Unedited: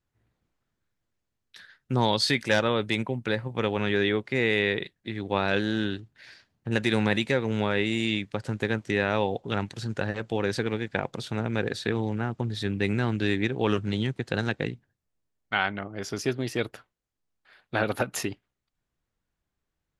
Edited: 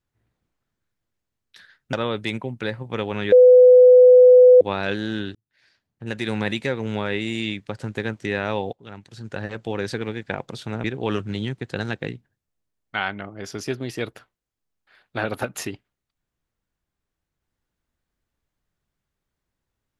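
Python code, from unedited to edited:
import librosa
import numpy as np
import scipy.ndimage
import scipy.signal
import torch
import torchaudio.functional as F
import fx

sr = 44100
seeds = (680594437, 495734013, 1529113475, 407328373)

y = fx.edit(x, sr, fx.cut(start_s=1.93, length_s=0.65),
    fx.bleep(start_s=3.97, length_s=1.29, hz=501.0, db=-6.5),
    fx.fade_in_span(start_s=6.0, length_s=1.17),
    fx.fade_in_from(start_s=9.38, length_s=0.74, curve='qua', floor_db=-13.5),
    fx.cut(start_s=11.49, length_s=1.93), tone=tone)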